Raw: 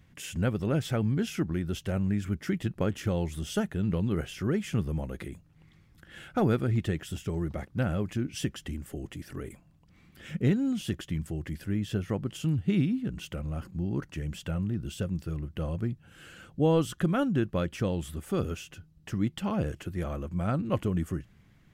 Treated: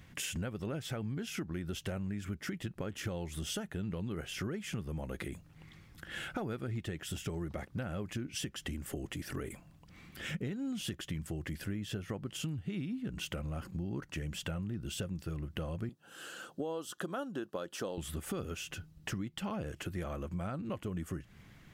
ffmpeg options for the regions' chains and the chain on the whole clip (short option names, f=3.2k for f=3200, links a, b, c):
-filter_complex "[0:a]asettb=1/sr,asplit=3[a][b][c];[a]atrim=end=15.894[d];[b]atrim=start=15.89:end=17.98,asetpts=PTS-STARTPTS,afade=t=in:d=0.004:c=qsin,afade=t=out:st=2.086:d=0.004:c=qsin,highpass=330,equalizer=f=2.2k:t=o:w=0.5:g=-13.5[e];[c]atrim=start=17.976[f];[d][e]acrossfade=d=0.004:c1=hsin:c2=qsin[g];[g][f]acrossfade=d=0.004:c1=qsin:c2=hsin,lowshelf=f=410:g=-5,alimiter=level_in=0.5dB:limit=-24dB:level=0:latency=1:release=351,volume=-0.5dB,acompressor=threshold=-43dB:ratio=5,volume=7dB"